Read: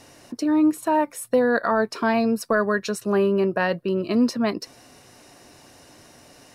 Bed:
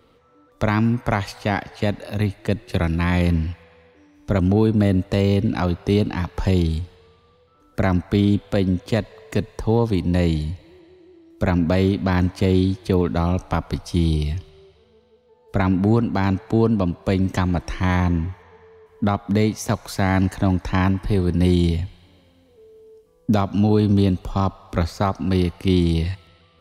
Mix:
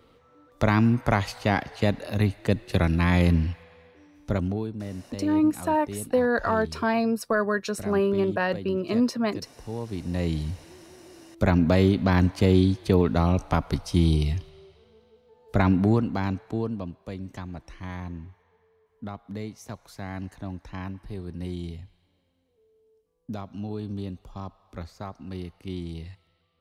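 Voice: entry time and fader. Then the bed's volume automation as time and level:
4.80 s, −3.0 dB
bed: 0:04.17 −1.5 dB
0:04.76 −17.5 dB
0:09.62 −17.5 dB
0:10.65 −1.5 dB
0:15.69 −1.5 dB
0:17.12 −16.5 dB

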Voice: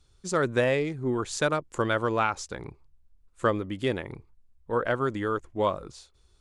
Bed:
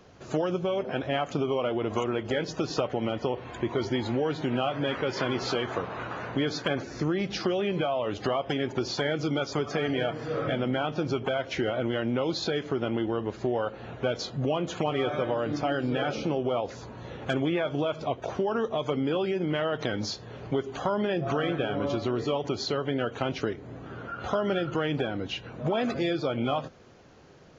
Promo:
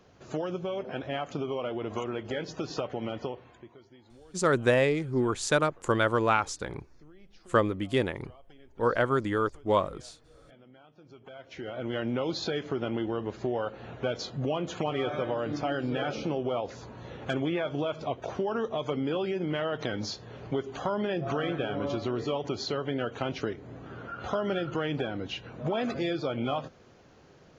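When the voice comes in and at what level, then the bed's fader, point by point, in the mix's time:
4.10 s, +1.0 dB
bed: 0:03.24 −5 dB
0:03.84 −27.5 dB
0:10.96 −27.5 dB
0:11.97 −2.5 dB

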